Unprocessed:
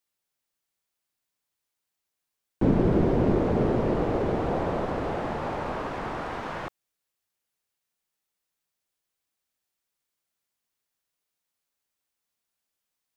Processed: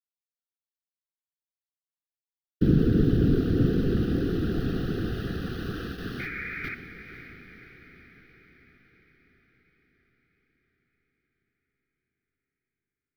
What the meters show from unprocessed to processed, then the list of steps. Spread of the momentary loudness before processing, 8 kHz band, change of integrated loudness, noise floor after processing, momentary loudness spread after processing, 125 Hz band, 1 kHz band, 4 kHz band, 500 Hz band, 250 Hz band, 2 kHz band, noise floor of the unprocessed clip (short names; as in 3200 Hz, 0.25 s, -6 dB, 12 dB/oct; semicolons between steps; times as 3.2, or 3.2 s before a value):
11 LU, n/a, 0.0 dB, under -85 dBFS, 18 LU, +3.5 dB, -14.5 dB, +3.0 dB, -5.0 dB, +1.5 dB, +2.5 dB, -84 dBFS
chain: gate with hold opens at -22 dBFS; whisperiser; in parallel at -5.5 dB: sample gate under -34.5 dBFS; on the sum: fixed phaser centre 2200 Hz, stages 6; painted sound noise, 6.19–6.75, 1200–2500 Hz -34 dBFS; Butterworth band-stop 950 Hz, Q 0.95; on a send: diffused feedback echo 0.529 s, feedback 57%, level -11 dB